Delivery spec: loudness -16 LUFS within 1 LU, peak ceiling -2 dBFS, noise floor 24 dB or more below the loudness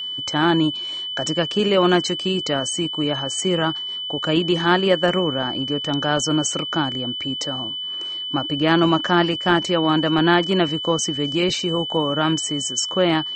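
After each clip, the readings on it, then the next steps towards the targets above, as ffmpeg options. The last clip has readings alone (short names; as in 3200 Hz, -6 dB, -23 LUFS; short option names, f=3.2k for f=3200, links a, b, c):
steady tone 3000 Hz; tone level -26 dBFS; loudness -20.5 LUFS; peak -2.5 dBFS; loudness target -16.0 LUFS
-> -af "bandreject=f=3k:w=30"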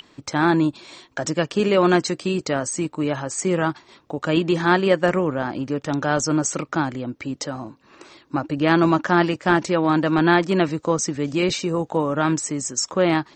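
steady tone none; loudness -21.5 LUFS; peak -3.0 dBFS; loudness target -16.0 LUFS
-> -af "volume=5.5dB,alimiter=limit=-2dB:level=0:latency=1"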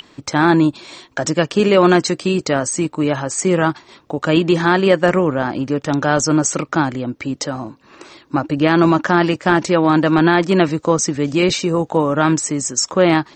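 loudness -16.5 LUFS; peak -2.0 dBFS; noise floor -51 dBFS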